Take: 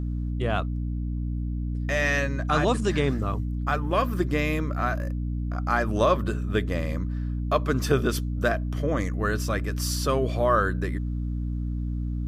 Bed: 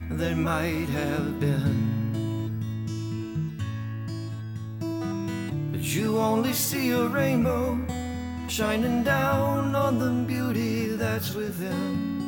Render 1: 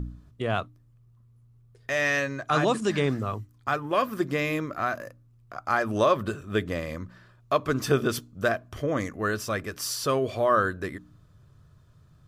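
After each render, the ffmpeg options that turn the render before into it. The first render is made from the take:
-af "bandreject=f=60:t=h:w=4,bandreject=f=120:t=h:w=4,bandreject=f=180:t=h:w=4,bandreject=f=240:t=h:w=4,bandreject=f=300:t=h:w=4"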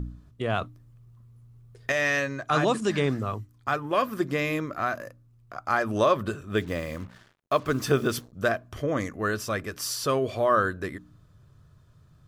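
-filter_complex "[0:a]asettb=1/sr,asplit=3[a][b][c];[a]atrim=end=0.614[d];[b]atrim=start=0.61:end=1.92,asetpts=PTS-STARTPTS,afade=t=in:d=0.004:c=qsin,afade=t=out:st=1.306:d=0.004:c=qsin,acontrast=33[e];[c]atrim=start=1.916[f];[d][e]acrossfade=d=0.004:c1=hsin:c2=qsin[g];[g][f]acrossfade=d=0.004:c1=qsin:c2=hsin,asettb=1/sr,asplit=3[h][i][j];[h]atrim=end=6.574[k];[i]atrim=start=6.57:end=8.33,asetpts=PTS-STARTPTS,afade=t=in:d=0.004:c=qsin,afade=t=out:st=1.756:d=0.004:c=qsin,acrusher=bits=7:mix=0:aa=0.5[l];[j]atrim=start=8.326[m];[k][l]acrossfade=d=0.004:c1=hsin:c2=qsin[n];[n][m]acrossfade=d=0.004:c1=qsin:c2=hsin"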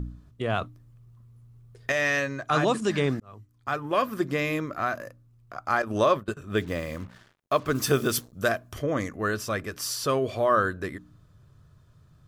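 -filter_complex "[0:a]asettb=1/sr,asplit=3[a][b][c];[a]atrim=end=5.824[d];[b]atrim=start=5.82:end=6.37,asetpts=PTS-STARTPTS,afade=t=in:d=0.004:c=qsin,afade=t=out:st=0.546:d=0.004:c=qsin,agate=range=-20dB:threshold=-31dB:ratio=16:release=100:detection=peak[e];[c]atrim=start=6.366[f];[d][e]acrossfade=d=0.004:c1=hsin:c2=qsin[g];[g][f]acrossfade=d=0.004:c1=qsin:c2=hsin,asettb=1/sr,asplit=3[h][i][j];[h]atrim=end=7.754[k];[i]atrim=start=7.75:end=8.79,asetpts=PTS-STARTPTS,afade=t=in:d=0.004:c=qsin,afade=t=out:st=1.036:d=0.004:c=qsin,aemphasis=mode=production:type=cd[l];[j]atrim=start=8.786[m];[k][l]acrossfade=d=0.004:c1=hsin:c2=qsin[n];[n][m]acrossfade=d=0.004:c1=qsin:c2=hsin,asplit=2[o][p];[o]atrim=end=3.2,asetpts=PTS-STARTPTS,afade=t=out:st=3.196:d=0.004:c=hsin[q];[p]atrim=start=3.2,asetpts=PTS-STARTPTS,afade=t=in:d=0.67[r];[q][r]concat=n=2:v=0:a=1"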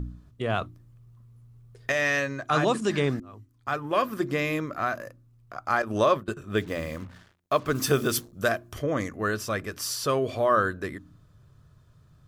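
-af "bandreject=f=87.72:t=h:w=4,bandreject=f=175.44:t=h:w=4,bandreject=f=263.16:t=h:w=4,bandreject=f=350.88:t=h:w=4"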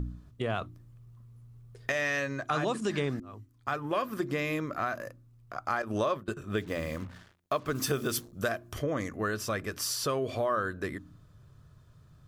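-af "acompressor=threshold=-29dB:ratio=2.5"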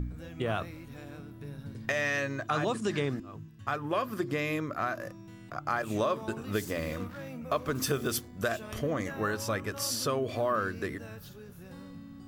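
-filter_complex "[1:a]volume=-18.5dB[a];[0:a][a]amix=inputs=2:normalize=0"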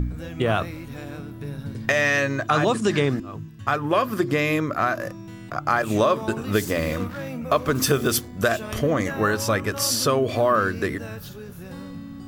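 -af "volume=9.5dB"

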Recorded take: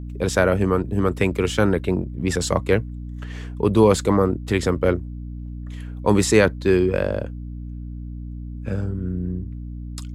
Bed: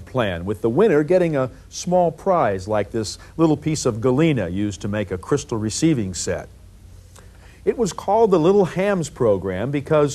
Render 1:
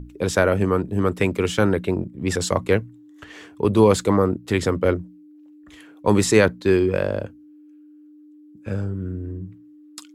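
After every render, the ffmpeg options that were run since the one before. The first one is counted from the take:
-af "bandreject=f=60:t=h:w=6,bandreject=f=120:t=h:w=6,bandreject=f=180:t=h:w=6,bandreject=f=240:t=h:w=6"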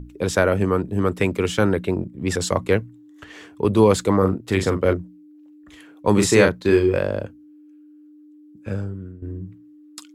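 -filter_complex "[0:a]asettb=1/sr,asplit=3[a][b][c];[a]atrim=end=4.184[d];[b]atrim=start=4.18:end=4.93,asetpts=PTS-STARTPTS,afade=t=in:d=0.004:c=qsin,afade=t=out:st=0.746:d=0.004:c=qsin,asplit=2[e][f];[f]adelay=42,volume=-8dB[g];[e][g]amix=inputs=2:normalize=0,atrim=end_sample=33075[h];[c]atrim=start=4.926[i];[d][h]acrossfade=d=0.004:c1=hsin:c2=qsin[j];[j][i]acrossfade=d=0.004:c1=qsin:c2=hsin,asettb=1/sr,asplit=3[k][l][m];[k]atrim=end=6.144[n];[l]atrim=start=6.14:end=6.99,asetpts=PTS-STARTPTS,afade=t=in:d=0.004:c=qsin,afade=t=out:st=0.846:d=0.004:c=qsin,asplit=2[o][p];[p]adelay=35,volume=-4.5dB[q];[o][q]amix=inputs=2:normalize=0,atrim=end_sample=37485[r];[m]atrim=start=6.986[s];[n][r]acrossfade=d=0.004:c1=hsin:c2=qsin[t];[t][s]acrossfade=d=0.004:c1=qsin:c2=hsin,asplit=2[u][v];[u]atrim=end=9.22,asetpts=PTS-STARTPTS,afade=t=out:st=8.72:d=0.5:silence=0.188365[w];[v]atrim=start=9.22,asetpts=PTS-STARTPTS,afade=t=in:d=0.004:c=hsin:silence=0.188365[x];[w][x]concat=n=2:v=0:a=1"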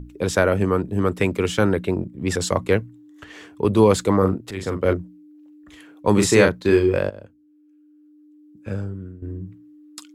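-filter_complex "[0:a]asplit=3[a][b][c];[a]atrim=end=4.51,asetpts=PTS-STARTPTS,afade=t=out:st=4.506:d=0.004:c=hsin:silence=0.199526[d];[b]atrim=start=4.51:end=7.1,asetpts=PTS-STARTPTS,afade=t=in:d=0.41:silence=0.199526,afade=t=out:st=2.586:d=0.004:c=hsin:silence=0.177828[e];[c]atrim=start=7.1,asetpts=PTS-STARTPTS,afade=t=in:d=1.87:silence=0.177828[f];[d][e][f]concat=n=3:v=0:a=1"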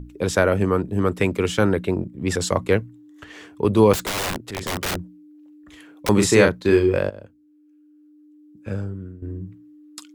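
-filter_complex "[0:a]asettb=1/sr,asplit=3[a][b][c];[a]atrim=end=3.934[d];[b]atrim=start=3.93:end=6.09,asetpts=PTS-STARTPTS,afade=t=in:d=0.004:c=qsin,afade=t=out:st=2.156:d=0.004:c=qsin,aeval=exprs='(mod(10*val(0)+1,2)-1)/10':c=same[e];[c]atrim=start=6.086[f];[d][e]acrossfade=d=0.004:c1=hsin:c2=qsin[g];[g][f]acrossfade=d=0.004:c1=qsin:c2=hsin"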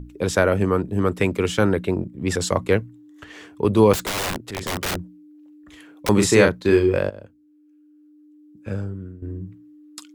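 -af anull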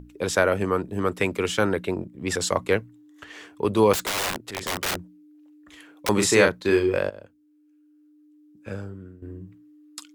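-af "lowshelf=f=320:g=-9"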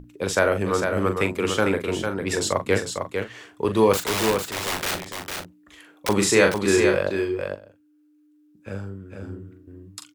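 -filter_complex "[0:a]asplit=2[a][b];[b]adelay=41,volume=-9dB[c];[a][c]amix=inputs=2:normalize=0,aecho=1:1:452:0.531"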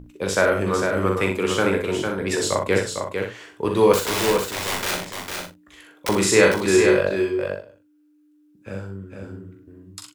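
-filter_complex "[0:a]asplit=2[a][b];[b]adelay=43,volume=-13dB[c];[a][c]amix=inputs=2:normalize=0,aecho=1:1:16|62:0.316|0.473"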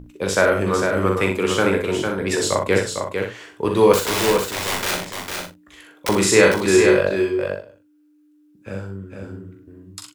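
-af "volume=2dB,alimiter=limit=-1dB:level=0:latency=1"

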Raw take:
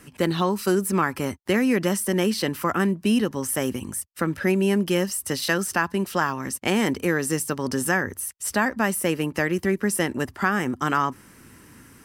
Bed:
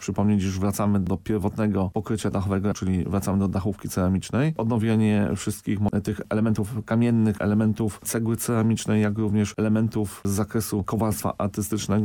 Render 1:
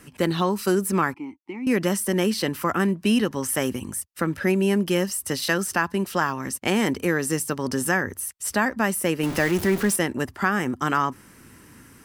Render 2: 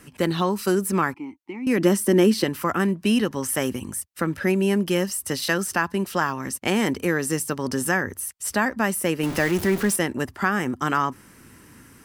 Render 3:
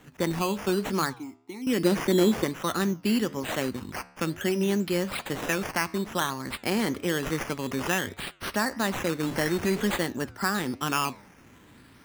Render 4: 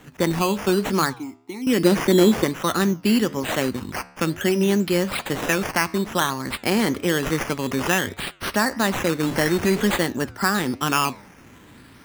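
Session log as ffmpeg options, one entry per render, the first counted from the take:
-filter_complex "[0:a]asettb=1/sr,asplit=3[a][b][c];[a]atrim=end=1.144[d];[b]atrim=start=1.14:end=1.67,asetpts=PTS-STARTPTS,afade=t=in:d=0.004:c=qsin,afade=t=out:st=0.526:d=0.004:c=qsin,asplit=3[e][f][g];[e]bandpass=f=300:t=q:w=8,volume=0dB[h];[f]bandpass=f=870:t=q:w=8,volume=-6dB[i];[g]bandpass=f=2.24k:t=q:w=8,volume=-9dB[j];[h][i][j]amix=inputs=3:normalize=0[k];[c]atrim=start=1.666[l];[d][k]acrossfade=d=0.004:c1=hsin:c2=qsin[m];[m][l]acrossfade=d=0.004:c1=qsin:c2=hsin,asettb=1/sr,asplit=3[n][o][p];[n]atrim=end=2.884[q];[o]atrim=start=2.88:end=3.68,asetpts=PTS-STARTPTS,afade=t=in:d=0.004:c=qsin,afade=t=out:st=0.796:d=0.004:c=qsin,equalizer=f=2.2k:t=o:w=2.8:g=3[r];[p]atrim=start=3.676[s];[q][r]acrossfade=d=0.004:c1=hsin:c2=qsin[t];[t][s]acrossfade=d=0.004:c1=qsin:c2=hsin,asettb=1/sr,asplit=3[u][v][w];[u]atrim=end=9.234[x];[v]atrim=start=9.23:end=9.96,asetpts=PTS-STARTPTS,afade=t=in:d=0.004:c=qsin,afade=t=out:st=0.726:d=0.004:c=qsin,aeval=exprs='val(0)+0.5*0.0473*sgn(val(0))':c=same[y];[w]atrim=start=9.956[z];[x][y]acrossfade=d=0.004:c1=hsin:c2=qsin[aa];[aa][z]acrossfade=d=0.004:c1=qsin:c2=hsin"
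-filter_complex "[0:a]asettb=1/sr,asplit=3[a][b][c];[a]atrim=end=1.784[d];[b]atrim=start=1.78:end=2.44,asetpts=PTS-STARTPTS,afade=t=in:d=0.004:c=qsin,afade=t=out:st=0.656:d=0.004:c=qsin,equalizer=f=300:w=1.5:g=10.5[e];[c]atrim=start=2.436[f];[d][e]acrossfade=d=0.004:c1=hsin:c2=qsin[g];[g][f]acrossfade=d=0.004:c1=qsin:c2=hsin"
-af "acrusher=samples=9:mix=1:aa=0.000001:lfo=1:lforange=5.4:lforate=0.56,flanger=delay=7.9:depth=6:regen=-88:speed=1.1:shape=sinusoidal"
-af "volume=6dB"

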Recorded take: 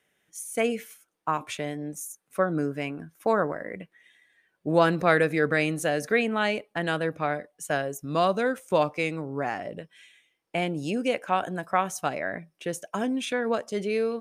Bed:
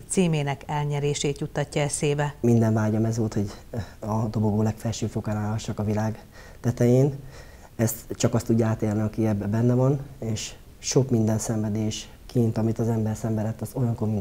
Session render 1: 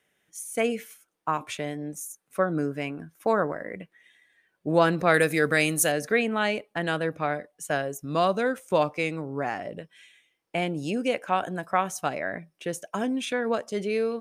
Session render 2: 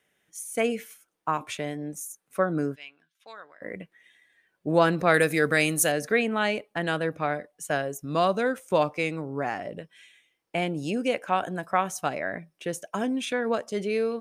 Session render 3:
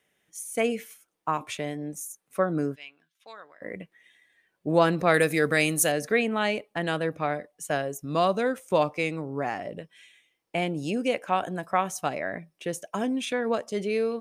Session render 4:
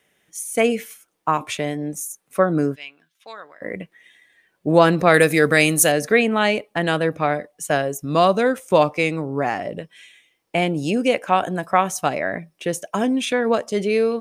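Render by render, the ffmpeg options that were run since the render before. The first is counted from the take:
-filter_complex "[0:a]asettb=1/sr,asplit=3[a][b][c];[a]atrim=end=5.144[d];[b]atrim=start=5.14:end=5.92,asetpts=PTS-STARTPTS,afade=t=in:d=0.004:c=qsin,afade=t=out:st=0.776:d=0.004:c=qsin,aemphasis=mode=production:type=75kf[e];[c]atrim=start=5.916[f];[d][e]acrossfade=d=0.004:c1=hsin:c2=qsin[g];[g][f]acrossfade=d=0.004:c1=qsin:c2=hsin"
-filter_complex "[0:a]asplit=3[a][b][c];[a]afade=t=out:st=2.74:d=0.02[d];[b]bandpass=f=3.5k:t=q:w=2.7,afade=t=in:st=2.74:d=0.02,afade=t=out:st=3.61:d=0.02[e];[c]afade=t=in:st=3.61:d=0.02[f];[d][e][f]amix=inputs=3:normalize=0"
-af "equalizer=f=1.5k:w=4.6:g=-3.5"
-af "volume=7.5dB,alimiter=limit=-1dB:level=0:latency=1"

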